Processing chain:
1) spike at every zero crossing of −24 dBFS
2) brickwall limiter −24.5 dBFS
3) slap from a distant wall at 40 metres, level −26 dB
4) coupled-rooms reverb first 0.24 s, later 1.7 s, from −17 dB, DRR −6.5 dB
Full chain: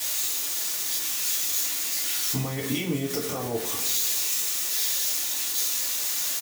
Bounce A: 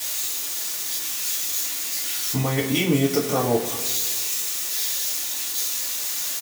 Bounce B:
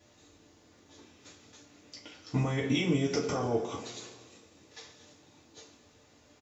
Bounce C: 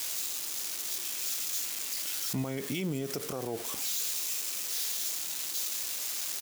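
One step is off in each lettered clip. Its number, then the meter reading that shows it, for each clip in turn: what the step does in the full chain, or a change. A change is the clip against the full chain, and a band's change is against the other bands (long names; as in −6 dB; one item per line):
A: 2, average gain reduction 1.5 dB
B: 1, distortion level −1 dB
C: 4, change in crest factor −4.5 dB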